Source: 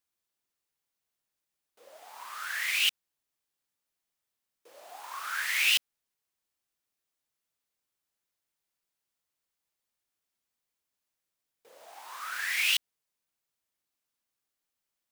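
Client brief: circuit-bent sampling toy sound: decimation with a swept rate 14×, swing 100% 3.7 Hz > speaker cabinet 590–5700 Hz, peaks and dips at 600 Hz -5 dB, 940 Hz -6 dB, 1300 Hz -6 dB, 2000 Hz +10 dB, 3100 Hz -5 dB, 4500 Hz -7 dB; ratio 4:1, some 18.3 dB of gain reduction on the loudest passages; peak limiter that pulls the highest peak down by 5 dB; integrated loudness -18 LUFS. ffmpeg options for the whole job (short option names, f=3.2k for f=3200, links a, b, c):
-af "acompressor=threshold=-44dB:ratio=4,alimiter=level_in=11.5dB:limit=-24dB:level=0:latency=1,volume=-11.5dB,acrusher=samples=14:mix=1:aa=0.000001:lfo=1:lforange=14:lforate=3.7,highpass=590,equalizer=f=600:t=q:w=4:g=-5,equalizer=f=940:t=q:w=4:g=-6,equalizer=f=1.3k:t=q:w=4:g=-6,equalizer=f=2k:t=q:w=4:g=10,equalizer=f=3.1k:t=q:w=4:g=-5,equalizer=f=4.5k:t=q:w=4:g=-7,lowpass=f=5.7k:w=0.5412,lowpass=f=5.7k:w=1.3066,volume=29dB"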